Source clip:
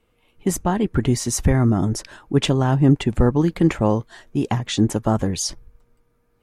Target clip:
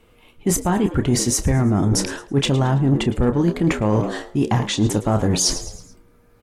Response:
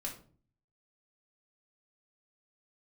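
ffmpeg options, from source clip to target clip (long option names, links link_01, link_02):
-filter_complex "[0:a]asplit=2[link_01][link_02];[link_02]adelay=29,volume=-11dB[link_03];[link_01][link_03]amix=inputs=2:normalize=0,acontrast=58,asplit=5[link_04][link_05][link_06][link_07][link_08];[link_05]adelay=109,afreqshift=82,volume=-16dB[link_09];[link_06]adelay=218,afreqshift=164,volume=-22.9dB[link_10];[link_07]adelay=327,afreqshift=246,volume=-29.9dB[link_11];[link_08]adelay=436,afreqshift=328,volume=-36.8dB[link_12];[link_04][link_09][link_10][link_11][link_12]amix=inputs=5:normalize=0,areverse,acompressor=threshold=-20dB:ratio=5,areverse,volume=4dB"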